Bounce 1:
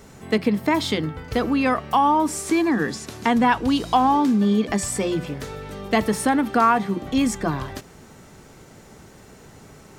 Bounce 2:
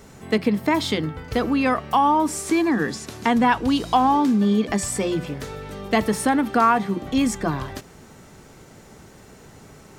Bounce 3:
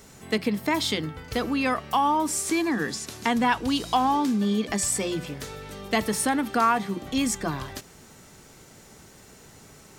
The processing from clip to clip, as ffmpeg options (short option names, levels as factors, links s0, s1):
-af anull
-af "highshelf=f=2500:g=8.5,volume=0.531"